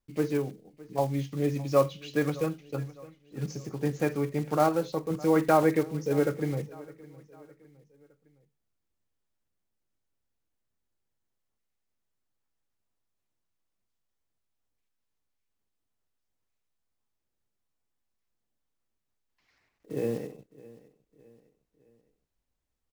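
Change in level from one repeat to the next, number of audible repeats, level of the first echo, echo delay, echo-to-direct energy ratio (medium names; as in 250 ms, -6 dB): -7.0 dB, 3, -20.5 dB, 611 ms, -19.5 dB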